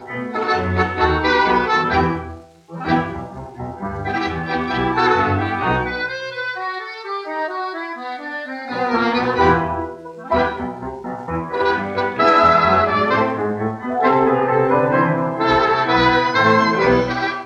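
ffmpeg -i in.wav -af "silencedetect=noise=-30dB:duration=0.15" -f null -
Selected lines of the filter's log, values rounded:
silence_start: 2.40
silence_end: 2.71 | silence_duration: 0.31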